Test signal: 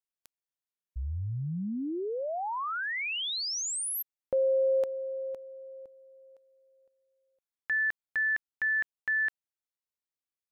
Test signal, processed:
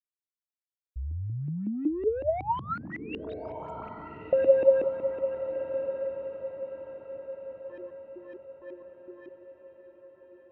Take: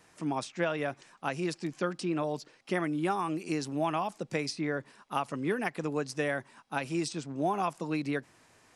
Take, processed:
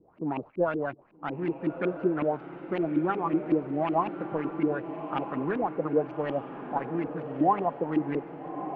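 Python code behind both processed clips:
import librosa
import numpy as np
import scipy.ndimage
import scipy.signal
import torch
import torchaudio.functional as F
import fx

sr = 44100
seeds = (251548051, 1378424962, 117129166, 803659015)

p1 = scipy.signal.medfilt(x, 25)
p2 = fx.filter_lfo_lowpass(p1, sr, shape='saw_up', hz=5.4, low_hz=280.0, high_hz=2600.0, q=4.3)
p3 = scipy.signal.sosfilt(scipy.signal.butter(2, 7700.0, 'lowpass', fs=sr, output='sos'), p2)
p4 = fx.high_shelf(p3, sr, hz=5100.0, db=-7.0)
y = p4 + fx.echo_diffused(p4, sr, ms=1256, feedback_pct=48, wet_db=-9.5, dry=0)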